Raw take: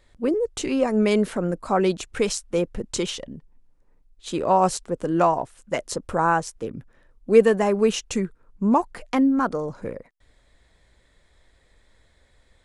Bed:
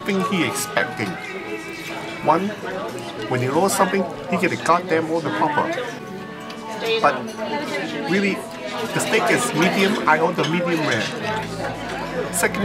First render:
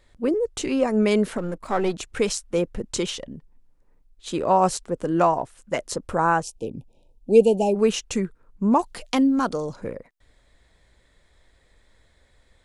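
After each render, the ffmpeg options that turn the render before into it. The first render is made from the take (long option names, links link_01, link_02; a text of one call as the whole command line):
ffmpeg -i in.wav -filter_complex "[0:a]asettb=1/sr,asplit=3[link_01][link_02][link_03];[link_01]atrim=end=1.384[link_04];[link_02]atrim=start=1.38:end=1.94,asetpts=PTS-STARTPTS,afade=type=in:duration=0.004:curve=qsin,afade=type=out:start_time=0.556:duration=0.004:curve=qsin,aeval=exprs='if(lt(val(0),0),0.447*val(0),val(0))':channel_layout=same[link_05];[link_03]atrim=start=1.936[link_06];[link_04][link_05]acrossfade=duration=0.004:curve1=hsin:curve2=qsin[link_07];[link_07][link_06]acrossfade=duration=0.004:curve1=qsin:curve2=hsin,asplit=3[link_08][link_09][link_10];[link_08]afade=type=out:start_time=6.42:duration=0.02[link_11];[link_09]asuperstop=centerf=1500:order=20:qfactor=1,afade=type=in:start_time=6.42:duration=0.02,afade=type=out:start_time=7.74:duration=0.02[link_12];[link_10]afade=type=in:start_time=7.74:duration=0.02[link_13];[link_11][link_12][link_13]amix=inputs=3:normalize=0,asettb=1/sr,asplit=3[link_14][link_15][link_16];[link_14]atrim=end=8.794[link_17];[link_15]atrim=start=8.79:end=9.76,asetpts=PTS-STARTPTS,afade=type=in:duration=0.004:curve=qsin,afade=type=out:start_time=0.966:duration=0.004:curve=qsin,highshelf=frequency=2500:width_type=q:width=1.5:gain=7.5[link_18];[link_16]atrim=start=9.756[link_19];[link_17][link_18]acrossfade=duration=0.004:curve1=hsin:curve2=qsin[link_20];[link_20][link_19]acrossfade=duration=0.004:curve1=qsin:curve2=hsin" out.wav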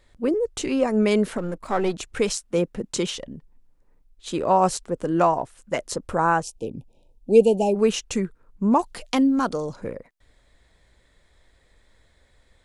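ffmpeg -i in.wav -filter_complex "[0:a]asettb=1/sr,asplit=3[link_01][link_02][link_03];[link_01]atrim=end=2.364[link_04];[link_02]atrim=start=2.36:end=3.15,asetpts=PTS-STARTPTS,afade=type=in:duration=0.004:curve=qsin,afade=type=out:start_time=0.786:duration=0.004:curve=qsin,lowshelf=frequency=110:width_type=q:width=1.5:gain=-9[link_05];[link_03]atrim=start=3.146[link_06];[link_04][link_05]acrossfade=duration=0.004:curve1=hsin:curve2=qsin[link_07];[link_07][link_06]acrossfade=duration=0.004:curve1=qsin:curve2=hsin" out.wav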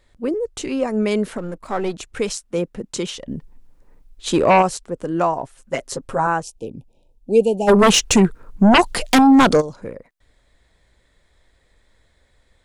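ffmpeg -i in.wav -filter_complex "[0:a]asplit=3[link_01][link_02][link_03];[link_01]afade=type=out:start_time=3.27:duration=0.02[link_04];[link_02]aeval=exprs='0.422*sin(PI/2*2*val(0)/0.422)':channel_layout=same,afade=type=in:start_time=3.27:duration=0.02,afade=type=out:start_time=4.61:duration=0.02[link_05];[link_03]afade=type=in:start_time=4.61:duration=0.02[link_06];[link_04][link_05][link_06]amix=inputs=3:normalize=0,asettb=1/sr,asplit=3[link_07][link_08][link_09];[link_07]atrim=end=5.424[link_10];[link_08]atrim=start=5.42:end=6.27,asetpts=PTS-STARTPTS,afade=type=in:duration=0.004:curve=qsin,afade=type=out:start_time=0.846:duration=0.004:curve=qsin,aecho=1:1:7.4:0.65,atrim=end_sample=37485[link_11];[link_09]atrim=start=6.266[link_12];[link_10][link_11]acrossfade=duration=0.004:curve1=hsin:curve2=qsin[link_13];[link_13][link_12]acrossfade=duration=0.004:curve1=qsin:curve2=hsin,asplit=3[link_14][link_15][link_16];[link_14]afade=type=out:start_time=7.67:duration=0.02[link_17];[link_15]aeval=exprs='0.422*sin(PI/2*3.55*val(0)/0.422)':channel_layout=same,afade=type=in:start_time=7.67:duration=0.02,afade=type=out:start_time=9.6:duration=0.02[link_18];[link_16]afade=type=in:start_time=9.6:duration=0.02[link_19];[link_17][link_18][link_19]amix=inputs=3:normalize=0" out.wav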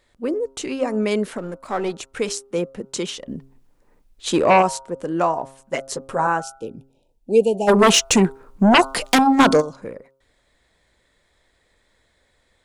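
ffmpeg -i in.wav -af "lowshelf=frequency=110:gain=-10.5,bandreject=frequency=134.2:width_type=h:width=4,bandreject=frequency=268.4:width_type=h:width=4,bandreject=frequency=402.6:width_type=h:width=4,bandreject=frequency=536.8:width_type=h:width=4,bandreject=frequency=671:width_type=h:width=4,bandreject=frequency=805.2:width_type=h:width=4,bandreject=frequency=939.4:width_type=h:width=4,bandreject=frequency=1073.6:width_type=h:width=4,bandreject=frequency=1207.8:width_type=h:width=4,bandreject=frequency=1342:width_type=h:width=4,bandreject=frequency=1476.2:width_type=h:width=4" out.wav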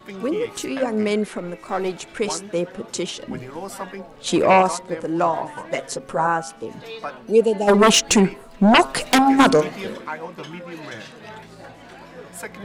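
ffmpeg -i in.wav -i bed.wav -filter_complex "[1:a]volume=-14.5dB[link_01];[0:a][link_01]amix=inputs=2:normalize=0" out.wav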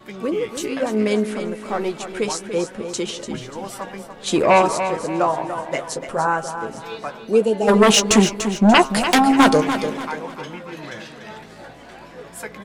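ffmpeg -i in.wav -filter_complex "[0:a]asplit=2[link_01][link_02];[link_02]adelay=14,volume=-10.5dB[link_03];[link_01][link_03]amix=inputs=2:normalize=0,aecho=1:1:292|584|876|1168:0.335|0.127|0.0484|0.0184" out.wav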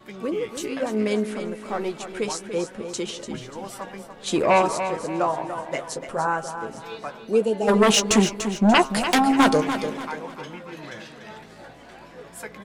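ffmpeg -i in.wav -af "volume=-4dB" out.wav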